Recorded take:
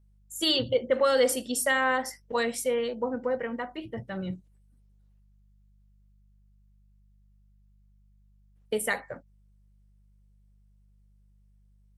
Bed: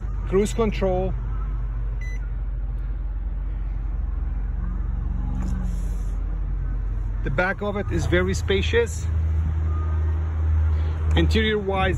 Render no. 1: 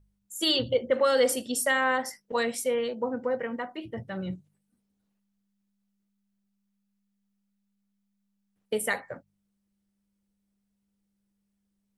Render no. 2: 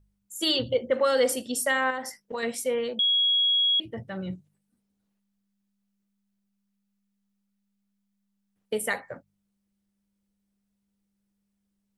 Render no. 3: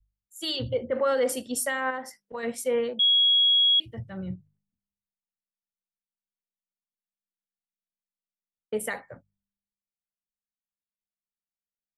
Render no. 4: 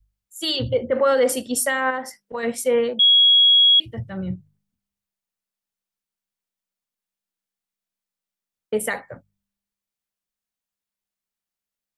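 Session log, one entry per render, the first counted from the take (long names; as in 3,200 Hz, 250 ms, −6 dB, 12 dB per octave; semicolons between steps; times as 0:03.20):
hum removal 50 Hz, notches 3
0:01.90–0:02.43: downward compressor, threshold −28 dBFS; 0:02.99–0:03.80: beep over 3,320 Hz −19.5 dBFS
brickwall limiter −20 dBFS, peak gain reduction 7 dB; multiband upward and downward expander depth 100%
level +6.5 dB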